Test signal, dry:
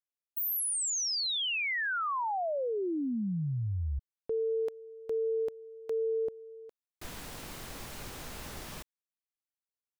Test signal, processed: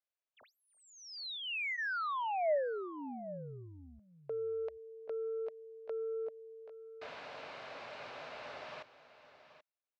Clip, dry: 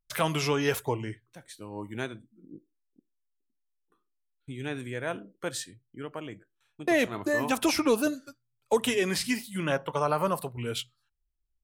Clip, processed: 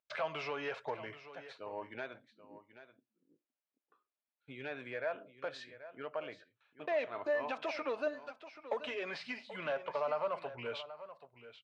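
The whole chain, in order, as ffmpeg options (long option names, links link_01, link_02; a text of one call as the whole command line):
ffmpeg -i in.wav -af "lowshelf=frequency=350:gain=-11.5,bandreject=frequency=1900:width=17,acompressor=threshold=-37dB:ratio=2.5:attack=14:release=210:detection=rms,asoftclip=type=tanh:threshold=-31dB,highpass=170,equalizer=frequency=200:width_type=q:width=4:gain=-9,equalizer=frequency=330:width_type=q:width=4:gain=-8,equalizer=frequency=610:width_type=q:width=4:gain=9,equalizer=frequency=3300:width_type=q:width=4:gain=-6,lowpass=frequency=3700:width=0.5412,lowpass=frequency=3700:width=1.3066,aecho=1:1:782:0.2,volume=1.5dB" out.wav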